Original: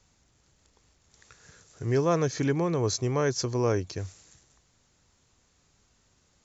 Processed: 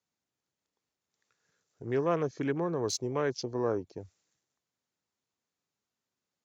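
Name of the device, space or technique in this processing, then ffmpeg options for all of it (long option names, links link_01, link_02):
over-cleaned archive recording: -filter_complex "[0:a]asettb=1/sr,asplit=3[link_01][link_02][link_03];[link_01]atrim=end=1.894[link_04];[link_02]atrim=start=1.89:end=3.22,asetpts=PTS-STARTPTS,afade=type=in:duration=0.004:curve=qsin,afade=type=out:start_time=1.326:duration=0.004:curve=qsin,highshelf=frequency=4200:gain=5[link_05];[link_03]atrim=start=3.216[link_06];[link_04][link_05]acrossfade=duration=0.004:curve1=hsin:curve2=qsin[link_07];[link_07][link_06]acrossfade=duration=0.004:curve1=qsin:curve2=hsin,highpass=180,lowpass=6500,afwtdn=0.0141,volume=-3.5dB"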